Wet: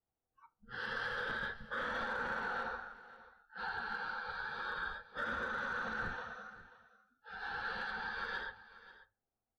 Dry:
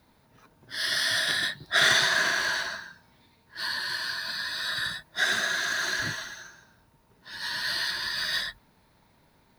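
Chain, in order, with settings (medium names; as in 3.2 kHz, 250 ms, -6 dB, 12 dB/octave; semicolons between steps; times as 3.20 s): low-pass 1.3 kHz 12 dB/octave; spectral noise reduction 28 dB; high-pass 170 Hz 6 dB/octave; in parallel at -2.5 dB: compression, threshold -44 dBFS, peak gain reduction 18 dB; on the sum: peak limiter -26 dBFS, peak gain reduction 11 dB; hard clipper -27 dBFS, distortion -36 dB; frequency shift -150 Hz; delay 537 ms -17 dB; on a send at -13 dB: reverberation RT60 0.35 s, pre-delay 4 ms; on the sum: trim -4 dB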